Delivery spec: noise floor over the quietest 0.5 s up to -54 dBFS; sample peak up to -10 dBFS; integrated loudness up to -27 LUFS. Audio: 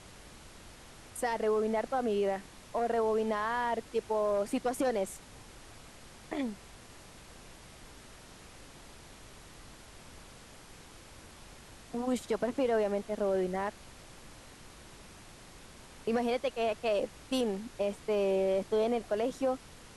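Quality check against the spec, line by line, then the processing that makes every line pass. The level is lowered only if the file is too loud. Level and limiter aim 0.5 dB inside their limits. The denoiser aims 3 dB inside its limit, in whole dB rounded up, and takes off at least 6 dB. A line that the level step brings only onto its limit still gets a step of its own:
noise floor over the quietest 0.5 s -52 dBFS: fail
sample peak -19.5 dBFS: OK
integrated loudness -32.5 LUFS: OK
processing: denoiser 6 dB, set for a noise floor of -52 dBFS

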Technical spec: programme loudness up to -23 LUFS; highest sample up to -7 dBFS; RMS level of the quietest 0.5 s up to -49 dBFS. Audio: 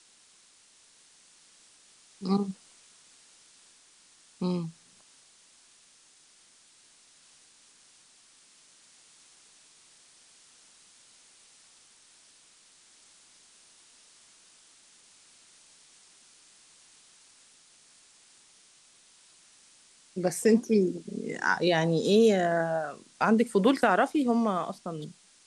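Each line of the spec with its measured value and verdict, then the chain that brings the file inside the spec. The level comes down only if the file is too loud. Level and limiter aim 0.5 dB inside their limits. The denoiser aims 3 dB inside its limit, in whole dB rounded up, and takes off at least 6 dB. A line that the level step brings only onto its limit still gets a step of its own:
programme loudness -27.0 LUFS: OK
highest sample -8.0 dBFS: OK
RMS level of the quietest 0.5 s -60 dBFS: OK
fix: none

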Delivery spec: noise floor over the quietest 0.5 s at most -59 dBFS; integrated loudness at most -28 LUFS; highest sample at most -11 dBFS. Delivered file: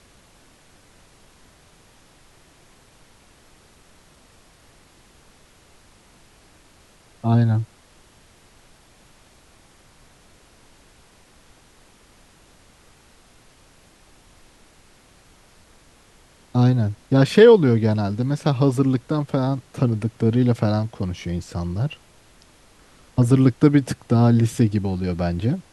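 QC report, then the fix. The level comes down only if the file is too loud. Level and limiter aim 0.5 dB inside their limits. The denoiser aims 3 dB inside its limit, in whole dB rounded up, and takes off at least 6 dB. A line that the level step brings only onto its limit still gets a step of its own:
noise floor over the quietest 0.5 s -53 dBFS: fail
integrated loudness -19.5 LUFS: fail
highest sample -1.5 dBFS: fail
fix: gain -9 dB; limiter -11.5 dBFS

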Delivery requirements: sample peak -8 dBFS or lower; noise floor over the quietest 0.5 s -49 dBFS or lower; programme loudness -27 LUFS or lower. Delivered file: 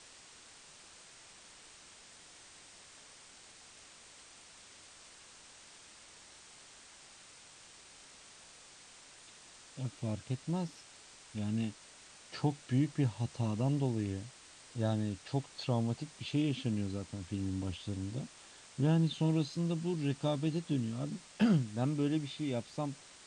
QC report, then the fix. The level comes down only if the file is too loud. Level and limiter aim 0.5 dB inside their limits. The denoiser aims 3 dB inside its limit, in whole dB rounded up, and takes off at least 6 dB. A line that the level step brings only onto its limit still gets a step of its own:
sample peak -18.5 dBFS: OK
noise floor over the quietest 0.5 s -56 dBFS: OK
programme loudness -35.5 LUFS: OK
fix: none

